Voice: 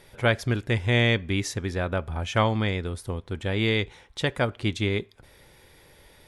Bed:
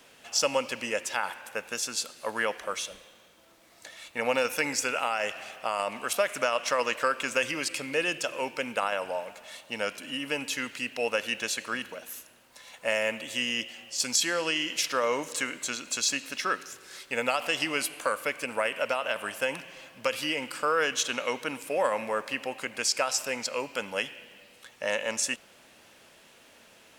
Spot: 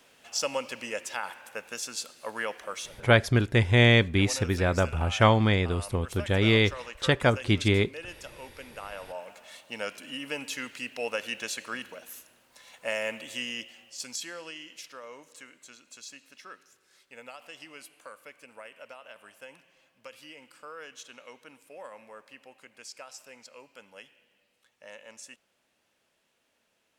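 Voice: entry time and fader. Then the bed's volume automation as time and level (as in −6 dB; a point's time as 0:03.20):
2.85 s, +2.5 dB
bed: 0:02.85 −4 dB
0:03.16 −13.5 dB
0:08.77 −13.5 dB
0:09.33 −3.5 dB
0:13.27 −3.5 dB
0:15.03 −18 dB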